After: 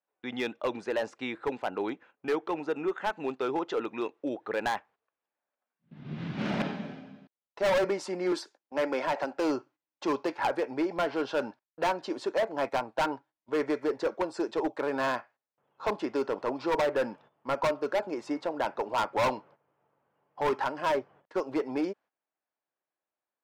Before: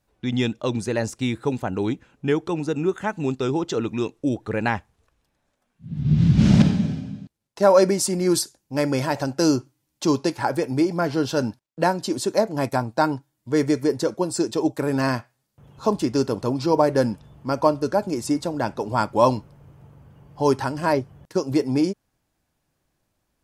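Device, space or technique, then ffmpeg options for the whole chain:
walkie-talkie: -filter_complex "[0:a]asettb=1/sr,asplit=3[s0][s1][s2];[s0]atrim=end=8.324[s3];[s1]atrim=start=8.32:end=9.38,asetpts=PTS-STARTPTS,afade=t=in:d=0.004:c=qsin,afade=t=out:st=1.056:d=0.004:c=qsin,highpass=f=190:w=0.5412,highpass=f=190:w=1.3066[s4];[s2]atrim=start=9.376[s5];[s3][s4]acrossfade=d=0.004:c1=hsin:c2=qsin[s6];[s6][s5]acrossfade=d=0.004:c1=qsin:c2=hsin,highpass=520,lowpass=2200,asoftclip=type=hard:threshold=0.0708,agate=range=0.224:threshold=0.002:ratio=16:detection=peak"

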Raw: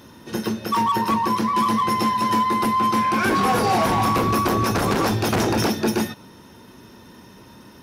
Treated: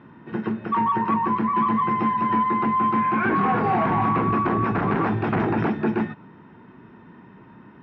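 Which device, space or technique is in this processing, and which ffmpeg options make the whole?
bass cabinet: -af "highpass=68,equalizer=f=81:t=q:w=4:g=-9,equalizer=f=160:t=q:w=4:g=5,equalizer=f=540:t=q:w=4:g=-8,lowpass=f=2200:w=0.5412,lowpass=f=2200:w=1.3066,volume=0.891"

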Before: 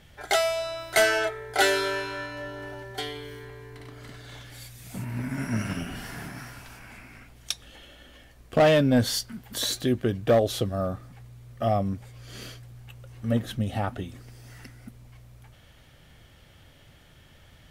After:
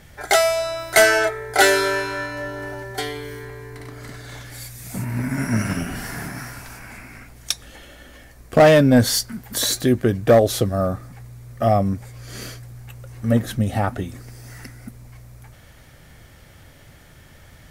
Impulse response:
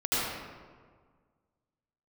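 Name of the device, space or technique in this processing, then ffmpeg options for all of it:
exciter from parts: -filter_complex "[0:a]asplit=2[s0][s1];[s1]highpass=2000,asoftclip=type=tanh:threshold=0.0708,highpass=f=2200:w=0.5412,highpass=f=2200:w=1.3066,volume=0.562[s2];[s0][s2]amix=inputs=2:normalize=0,volume=2.24"

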